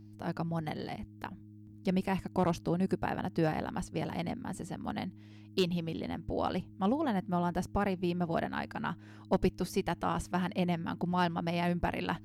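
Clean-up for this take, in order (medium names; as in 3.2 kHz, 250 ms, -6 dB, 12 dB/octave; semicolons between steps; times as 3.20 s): clip repair -17.5 dBFS; de-hum 105.3 Hz, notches 3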